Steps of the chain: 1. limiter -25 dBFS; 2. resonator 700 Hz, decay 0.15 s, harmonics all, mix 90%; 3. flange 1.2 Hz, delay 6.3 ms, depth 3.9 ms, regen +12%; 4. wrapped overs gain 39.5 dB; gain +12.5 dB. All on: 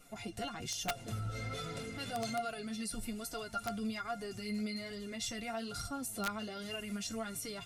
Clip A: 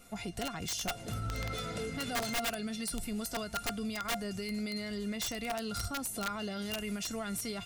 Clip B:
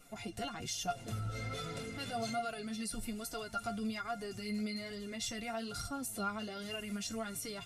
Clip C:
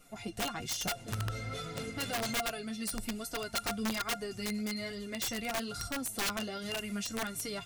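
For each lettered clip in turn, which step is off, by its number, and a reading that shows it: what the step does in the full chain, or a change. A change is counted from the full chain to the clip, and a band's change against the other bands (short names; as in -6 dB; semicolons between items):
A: 3, 1 kHz band -2.0 dB; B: 4, distortion -15 dB; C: 1, mean gain reduction 3.0 dB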